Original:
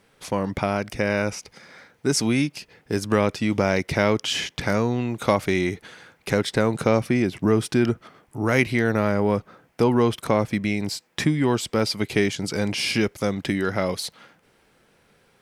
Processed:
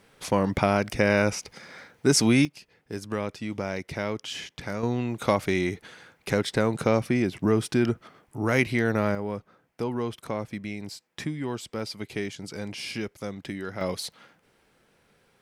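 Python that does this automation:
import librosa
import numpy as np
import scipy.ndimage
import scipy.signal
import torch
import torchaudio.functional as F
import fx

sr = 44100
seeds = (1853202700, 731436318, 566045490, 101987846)

y = fx.gain(x, sr, db=fx.steps((0.0, 1.5), (2.45, -10.0), (4.83, -3.0), (9.15, -10.5), (13.81, -4.0)))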